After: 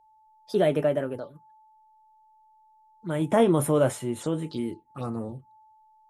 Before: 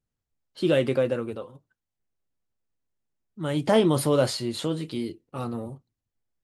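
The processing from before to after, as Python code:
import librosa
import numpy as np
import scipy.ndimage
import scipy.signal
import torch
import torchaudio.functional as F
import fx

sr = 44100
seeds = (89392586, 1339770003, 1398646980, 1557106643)

y = fx.speed_glide(x, sr, from_pct=117, to_pct=94)
y = y + 10.0 ** (-53.0 / 20.0) * np.sin(2.0 * np.pi * 870.0 * np.arange(len(y)) / sr)
y = fx.env_phaser(y, sr, low_hz=200.0, high_hz=4600.0, full_db=-26.5)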